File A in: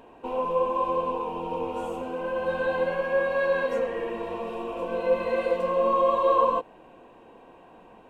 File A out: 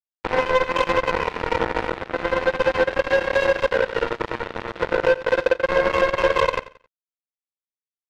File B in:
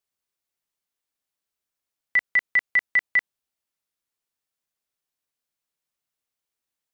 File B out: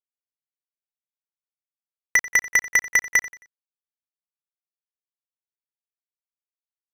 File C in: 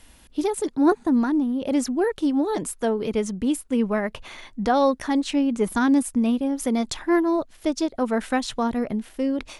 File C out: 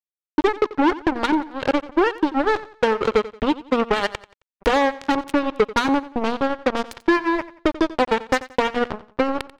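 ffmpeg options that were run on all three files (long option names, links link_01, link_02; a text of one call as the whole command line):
ffmpeg -i in.wav -af "lowpass=2700,aecho=1:1:2.2:0.62,acompressor=threshold=-24dB:ratio=8,acrusher=bits=3:mix=0:aa=0.5,aecho=1:1:89|178|267:0.141|0.048|0.0163,volume=8.5dB" out.wav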